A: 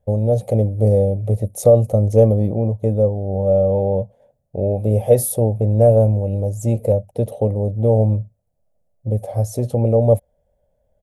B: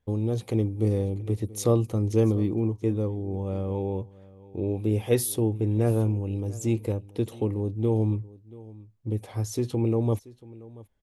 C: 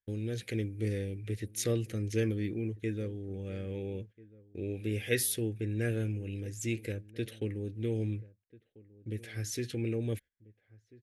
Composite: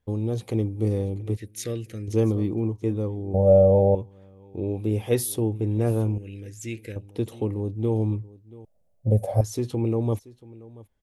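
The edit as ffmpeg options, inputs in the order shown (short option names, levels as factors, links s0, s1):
-filter_complex "[2:a]asplit=2[s0][s1];[0:a]asplit=2[s2][s3];[1:a]asplit=5[s4][s5][s6][s7][s8];[s4]atrim=end=1.372[s9];[s0]atrim=start=1.368:end=2.082[s10];[s5]atrim=start=2.078:end=3.342[s11];[s2]atrim=start=3.338:end=3.952[s12];[s6]atrim=start=3.948:end=6.182[s13];[s1]atrim=start=6.178:end=6.962[s14];[s7]atrim=start=6.958:end=8.652[s15];[s3]atrim=start=8.648:end=9.412[s16];[s8]atrim=start=9.408[s17];[s9][s10]acrossfade=d=0.004:c1=hsin:c2=hsin[s18];[s18][s11]acrossfade=d=0.004:c1=hsin:c2=hsin[s19];[s19][s12]acrossfade=d=0.004:c1=hsin:c2=hsin[s20];[s20][s13]acrossfade=d=0.004:c1=hsin:c2=hsin[s21];[s21][s14]acrossfade=d=0.004:c1=hsin:c2=hsin[s22];[s22][s15]acrossfade=d=0.004:c1=hsin:c2=hsin[s23];[s23][s16]acrossfade=d=0.004:c1=hsin:c2=hsin[s24];[s24][s17]acrossfade=d=0.004:c1=hsin:c2=hsin"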